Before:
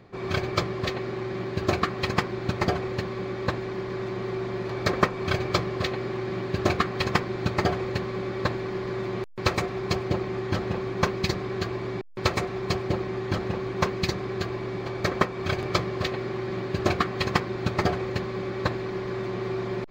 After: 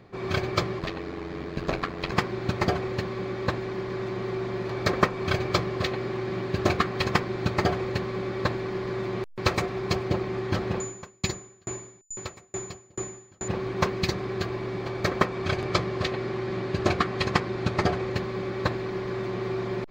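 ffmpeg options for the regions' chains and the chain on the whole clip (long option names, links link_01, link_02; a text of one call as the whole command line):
ffmpeg -i in.wav -filter_complex "[0:a]asettb=1/sr,asplit=3[link_01][link_02][link_03];[link_01]atrim=end=0.794[link_04];[link_02]atrim=start=0.79:end=2.12,asetpts=PTS-STARTPTS,afade=type=in:duration=0.004:curve=qsin,afade=type=out:start_time=1.326:duration=0.004:curve=qsin,acrossover=split=5100[link_05][link_06];[link_06]acompressor=threshold=-49dB:ratio=4:attack=1:release=60[link_07];[link_05][link_07]amix=inputs=2:normalize=0,aeval=exprs='val(0)*sin(2*PI*45*n/s)':channel_layout=same,bandreject=frequency=60:width_type=h:width=6,bandreject=frequency=120:width_type=h:width=6,bandreject=frequency=180:width_type=h:width=6,bandreject=frequency=240:width_type=h:width=6,bandreject=frequency=300:width_type=h:width=6,bandreject=frequency=360:width_type=h:width=6,bandreject=frequency=420:width_type=h:width=6,bandreject=frequency=480:width_type=h:width=6,bandreject=frequency=540:width_type=h:width=6[link_08];[link_03]atrim=start=2.116[link_09];[link_04][link_08]acrossfade=duration=0.004:curve1=hsin:curve2=qsin[link_10];[link_10][link_09]acrossfade=duration=0.004:curve1=qsin:curve2=hsin,asettb=1/sr,asplit=3[link_11][link_12][link_13];[link_11]atrim=end=10.804[link_14];[link_12]atrim=start=10.8:end=13.48,asetpts=PTS-STARTPTS,afade=type=in:duration=0.004:curve=qsin,afade=type=out:start_time=2.676:duration=0.004:curve=qsin,aeval=exprs='val(0)+0.0282*sin(2*PI*7000*n/s)':channel_layout=same,aeval=exprs='val(0)*pow(10,-37*if(lt(mod(2.3*n/s,1),2*abs(2.3)/1000),1-mod(2.3*n/s,1)/(2*abs(2.3)/1000),(mod(2.3*n/s,1)-2*abs(2.3)/1000)/(1-2*abs(2.3)/1000))/20)':channel_layout=same[link_15];[link_13]atrim=start=13.476[link_16];[link_14][link_15]acrossfade=duration=0.004:curve1=hsin:curve2=qsin[link_17];[link_17][link_16]acrossfade=duration=0.004:curve1=qsin:curve2=hsin,asettb=1/sr,asplit=3[link_18][link_19][link_20];[link_18]atrim=end=15.254[link_21];[link_19]atrim=start=15.25:end=18.16,asetpts=PTS-STARTPTS,afade=type=in:duration=0.004:curve=qsin,afade=type=out:start_time=2.906:duration=0.004:curve=qsin,lowpass=11000,acompressor=mode=upward:threshold=-27dB:ratio=2.5:attack=3.2:release=140:knee=2.83:detection=peak[link_22];[link_20]atrim=start=18.156[link_23];[link_21][link_22]acrossfade=duration=0.004:curve1=hsin:curve2=qsin[link_24];[link_24][link_23]acrossfade=duration=0.004:curve1=qsin:curve2=hsin" out.wav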